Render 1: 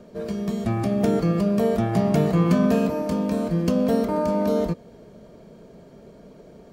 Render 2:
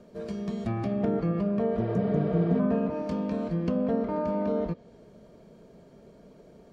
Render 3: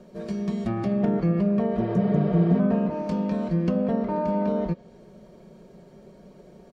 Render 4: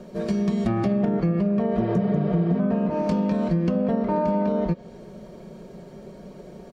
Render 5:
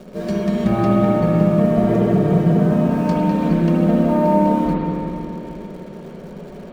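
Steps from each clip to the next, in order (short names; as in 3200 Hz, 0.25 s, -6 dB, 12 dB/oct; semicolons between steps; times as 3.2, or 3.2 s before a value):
treble ducked by the level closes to 1600 Hz, closed at -16 dBFS; spectral repair 1.81–2.57, 370–5400 Hz before; gain -6 dB
comb 5.4 ms, depth 45%; gain +2.5 dB
compressor, threshold -26 dBFS, peak gain reduction 10.5 dB; gain +7 dB
in parallel at -12 dB: requantised 6-bit, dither none; on the sum: spring tank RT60 3.1 s, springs 56/60 ms, chirp 50 ms, DRR -4.5 dB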